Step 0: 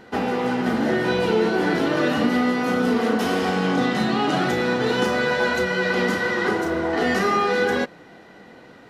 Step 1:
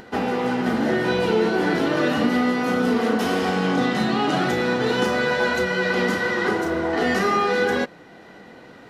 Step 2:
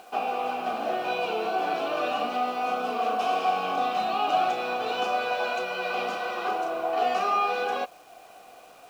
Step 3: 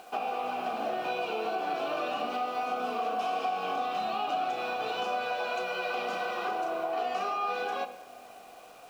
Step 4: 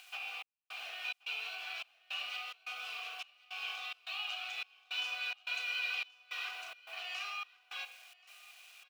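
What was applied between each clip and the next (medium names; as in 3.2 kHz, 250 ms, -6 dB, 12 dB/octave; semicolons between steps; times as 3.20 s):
upward compressor, threshold -39 dBFS
vowel filter a; peaking EQ 8.4 kHz +13.5 dB 2.7 oct; word length cut 10-bit, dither none; trim +4.5 dB
compression 4:1, threshold -28 dBFS, peak gain reduction 8 dB; on a send at -12 dB: reverberation RT60 1.7 s, pre-delay 21 ms; on the sum: trim -1 dB
trance gate "xxx..xxx.x" 107 bpm -60 dB; resonant high-pass 2.5 kHz, resonance Q 1.8; delay 1080 ms -23 dB; trim -1.5 dB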